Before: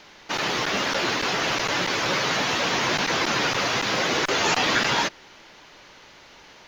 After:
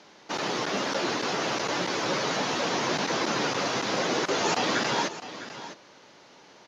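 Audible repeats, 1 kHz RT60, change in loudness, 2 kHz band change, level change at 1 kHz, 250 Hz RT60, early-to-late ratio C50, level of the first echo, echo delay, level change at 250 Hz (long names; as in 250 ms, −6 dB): 1, no reverb audible, −4.5 dB, −7.0 dB, −3.5 dB, no reverb audible, no reverb audible, −13.5 dB, 655 ms, −1.0 dB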